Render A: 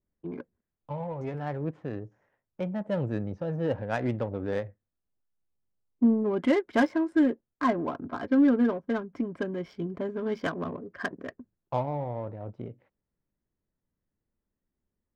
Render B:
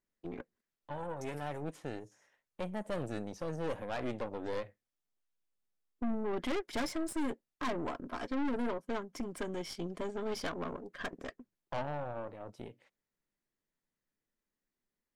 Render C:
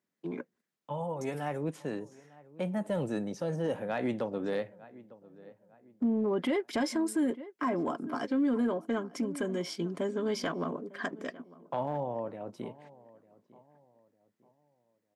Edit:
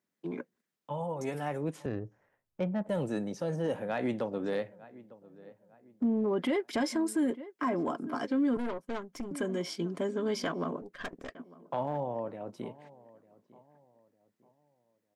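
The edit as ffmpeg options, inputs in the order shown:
-filter_complex "[1:a]asplit=2[s0][s1];[2:a]asplit=4[s2][s3][s4][s5];[s2]atrim=end=1.862[s6];[0:a]atrim=start=1.858:end=2.892[s7];[s3]atrim=start=2.888:end=8.572[s8];[s0]atrim=start=8.568:end=9.312[s9];[s4]atrim=start=9.308:end=10.822[s10];[s1]atrim=start=10.818:end=11.352[s11];[s5]atrim=start=11.348[s12];[s6][s7]acrossfade=d=0.004:c1=hsin:c2=hsin[s13];[s13][s8]acrossfade=d=0.004:c1=hsin:c2=hsin[s14];[s14][s9]acrossfade=d=0.004:c1=hsin:c2=hsin[s15];[s15][s10]acrossfade=d=0.004:c1=hsin:c2=hsin[s16];[s16][s11]acrossfade=d=0.004:c1=hsin:c2=hsin[s17];[s17][s12]acrossfade=d=0.004:c1=hsin:c2=hsin"

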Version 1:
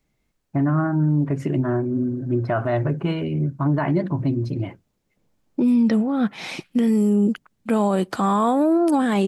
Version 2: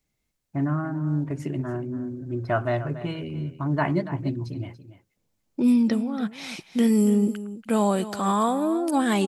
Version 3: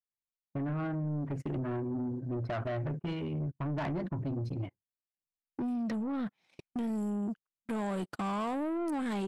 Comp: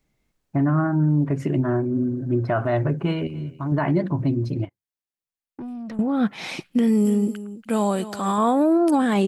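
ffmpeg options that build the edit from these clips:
-filter_complex "[1:a]asplit=2[s0][s1];[0:a]asplit=4[s2][s3][s4][s5];[s2]atrim=end=3.272[s6];[s0]atrim=start=3.268:end=3.722[s7];[s3]atrim=start=3.718:end=4.652[s8];[2:a]atrim=start=4.648:end=5.992[s9];[s4]atrim=start=5.988:end=7.052[s10];[s1]atrim=start=7.048:end=8.382[s11];[s5]atrim=start=8.378[s12];[s6][s7]acrossfade=d=0.004:c1=hsin:c2=hsin[s13];[s13][s8]acrossfade=d=0.004:c1=hsin:c2=hsin[s14];[s14][s9]acrossfade=d=0.004:c1=hsin:c2=hsin[s15];[s15][s10]acrossfade=d=0.004:c1=hsin:c2=hsin[s16];[s16][s11]acrossfade=d=0.004:c1=hsin:c2=hsin[s17];[s17][s12]acrossfade=d=0.004:c1=hsin:c2=hsin"

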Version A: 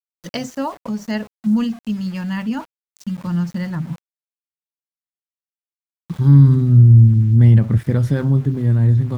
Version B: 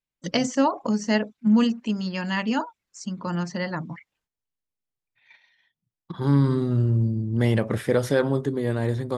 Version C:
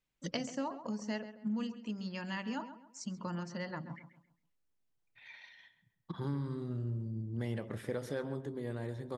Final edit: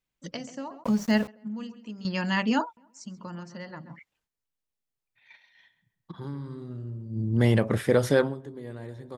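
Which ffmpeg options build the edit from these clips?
-filter_complex "[1:a]asplit=3[s0][s1][s2];[2:a]asplit=5[s3][s4][s5][s6][s7];[s3]atrim=end=0.842[s8];[0:a]atrim=start=0.838:end=1.282[s9];[s4]atrim=start=1.278:end=2.052[s10];[s0]atrim=start=2.048:end=2.772[s11];[s5]atrim=start=2.768:end=3.992[s12];[s1]atrim=start=3.988:end=5.552[s13];[s6]atrim=start=5.548:end=7.25[s14];[s2]atrim=start=7.09:end=8.35[s15];[s7]atrim=start=8.19[s16];[s8][s9]acrossfade=d=0.004:c1=hsin:c2=hsin[s17];[s17][s10]acrossfade=d=0.004:c1=hsin:c2=hsin[s18];[s18][s11]acrossfade=d=0.004:c1=hsin:c2=hsin[s19];[s19][s12]acrossfade=d=0.004:c1=hsin:c2=hsin[s20];[s20][s13]acrossfade=d=0.004:c1=hsin:c2=hsin[s21];[s21][s14]acrossfade=d=0.004:c1=hsin:c2=hsin[s22];[s22][s15]acrossfade=d=0.16:c1=tri:c2=tri[s23];[s23][s16]acrossfade=d=0.16:c1=tri:c2=tri"

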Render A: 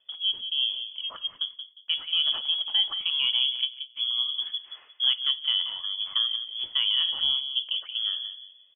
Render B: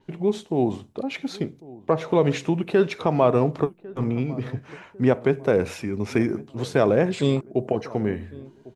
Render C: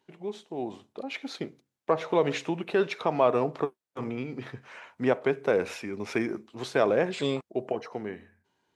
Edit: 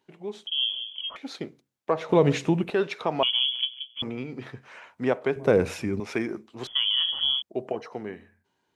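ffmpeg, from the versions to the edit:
-filter_complex "[0:a]asplit=3[s0][s1][s2];[1:a]asplit=2[s3][s4];[2:a]asplit=6[s5][s6][s7][s8][s9][s10];[s5]atrim=end=0.472[s11];[s0]atrim=start=0.468:end=1.162[s12];[s6]atrim=start=1.158:end=2.092[s13];[s3]atrim=start=2.088:end=2.702[s14];[s7]atrim=start=2.698:end=3.232[s15];[s1]atrim=start=3.228:end=4.022[s16];[s8]atrim=start=4.018:end=5.362[s17];[s4]atrim=start=5.358:end=6.002[s18];[s9]atrim=start=5.998:end=6.672[s19];[s2]atrim=start=6.668:end=7.422[s20];[s10]atrim=start=7.418[s21];[s11][s12]acrossfade=d=0.004:c1=hsin:c2=hsin[s22];[s22][s13]acrossfade=d=0.004:c1=hsin:c2=hsin[s23];[s23][s14]acrossfade=d=0.004:c1=hsin:c2=hsin[s24];[s24][s15]acrossfade=d=0.004:c1=hsin:c2=hsin[s25];[s25][s16]acrossfade=d=0.004:c1=hsin:c2=hsin[s26];[s26][s17]acrossfade=d=0.004:c1=hsin:c2=hsin[s27];[s27][s18]acrossfade=d=0.004:c1=hsin:c2=hsin[s28];[s28][s19]acrossfade=d=0.004:c1=hsin:c2=hsin[s29];[s29][s20]acrossfade=d=0.004:c1=hsin:c2=hsin[s30];[s30][s21]acrossfade=d=0.004:c1=hsin:c2=hsin"

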